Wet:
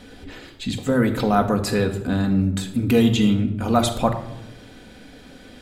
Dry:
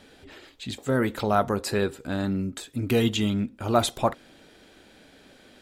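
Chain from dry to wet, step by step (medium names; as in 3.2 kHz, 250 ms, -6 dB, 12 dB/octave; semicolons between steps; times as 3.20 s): bass shelf 190 Hz +8 dB; in parallel at 0 dB: compression, threshold -29 dBFS, peak gain reduction 14.5 dB; on the sum: simulated room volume 3300 m³, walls furnished, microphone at 1.9 m; trim -1 dB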